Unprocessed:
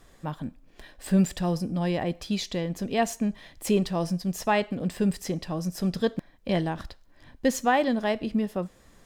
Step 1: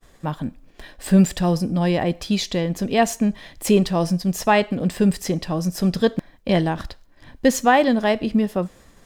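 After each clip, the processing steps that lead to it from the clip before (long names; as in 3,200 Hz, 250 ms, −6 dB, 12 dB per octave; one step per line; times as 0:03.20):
downward expander −50 dBFS
level +7 dB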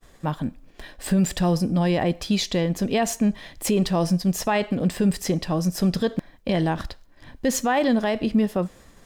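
brickwall limiter −12 dBFS, peak gain reduction 8.5 dB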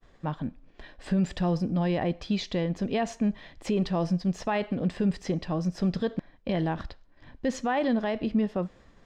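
high-frequency loss of the air 140 metres
level −5 dB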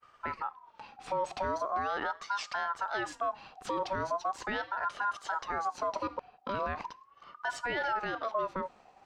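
brickwall limiter −21 dBFS, peak gain reduction 4 dB
ring modulator whose carrier an LFO sweeps 980 Hz, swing 25%, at 0.4 Hz
level −1 dB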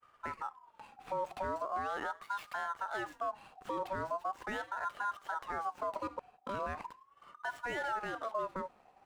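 running median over 9 samples
level −4 dB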